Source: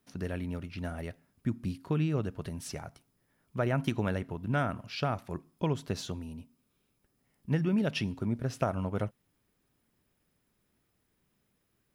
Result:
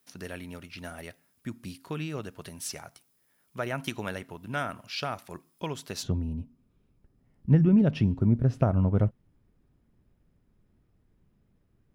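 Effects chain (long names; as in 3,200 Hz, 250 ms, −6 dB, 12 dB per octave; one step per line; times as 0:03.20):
spectral tilt +2.5 dB per octave, from 0:06.02 −3.5 dB per octave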